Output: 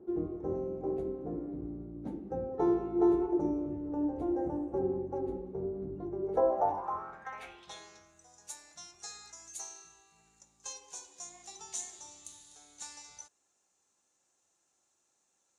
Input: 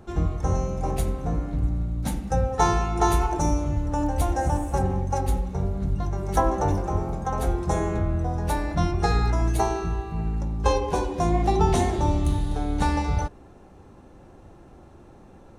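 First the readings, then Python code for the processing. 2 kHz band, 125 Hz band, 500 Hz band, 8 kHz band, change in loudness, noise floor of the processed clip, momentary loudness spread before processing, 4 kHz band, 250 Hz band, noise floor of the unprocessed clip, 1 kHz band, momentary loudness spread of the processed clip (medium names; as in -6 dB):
-18.0 dB, -23.5 dB, -5.5 dB, -5.5 dB, -9.5 dB, -77 dBFS, 6 LU, -12.5 dB, -6.5 dB, -49 dBFS, -13.5 dB, 19 LU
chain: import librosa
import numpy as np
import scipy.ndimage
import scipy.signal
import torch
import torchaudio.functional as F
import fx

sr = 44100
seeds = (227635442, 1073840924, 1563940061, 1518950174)

y = fx.filter_sweep_bandpass(x, sr, from_hz=360.0, to_hz=7000.0, start_s=6.19, end_s=8.15, q=4.9)
y = y * librosa.db_to_amplitude(3.5)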